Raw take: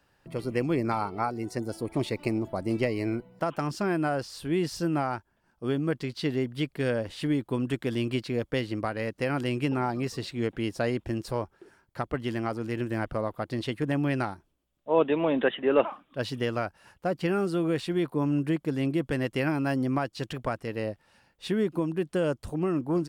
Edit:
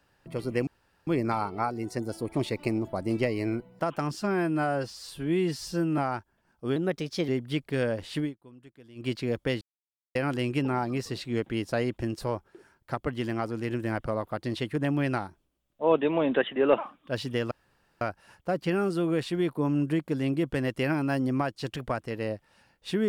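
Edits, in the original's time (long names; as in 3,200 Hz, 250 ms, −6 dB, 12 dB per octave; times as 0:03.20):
0:00.67: splice in room tone 0.40 s
0:03.75–0:04.97: time-stretch 1.5×
0:05.75–0:06.35: play speed 115%
0:07.25–0:08.18: duck −22.5 dB, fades 0.16 s
0:08.68–0:09.22: silence
0:16.58: splice in room tone 0.50 s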